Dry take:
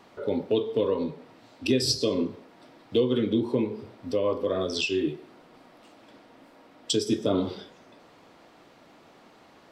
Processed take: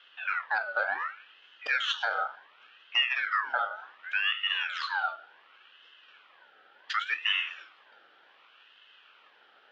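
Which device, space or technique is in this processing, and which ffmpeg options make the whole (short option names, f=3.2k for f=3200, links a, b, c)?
voice changer toy: -af "aeval=exprs='val(0)*sin(2*PI*1700*n/s+1700*0.4/0.68*sin(2*PI*0.68*n/s))':c=same,highpass=520,equalizer=f=680:t=q:w=4:g=-4,equalizer=f=970:t=q:w=4:g=-3,equalizer=f=1.4k:t=q:w=4:g=4,equalizer=f=2.1k:t=q:w=4:g=-8,equalizer=f=3.1k:t=q:w=4:g=7,lowpass=f=3.8k:w=0.5412,lowpass=f=3.8k:w=1.3066,volume=-1dB"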